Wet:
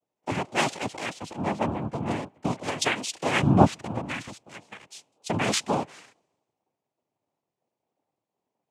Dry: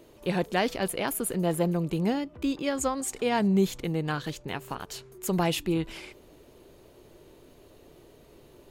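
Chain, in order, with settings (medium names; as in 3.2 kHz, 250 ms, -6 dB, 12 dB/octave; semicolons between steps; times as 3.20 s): noise-vocoded speech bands 4; dynamic bell 2.1 kHz, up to +5 dB, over -44 dBFS, Q 0.85; three bands expanded up and down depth 100%; trim -2 dB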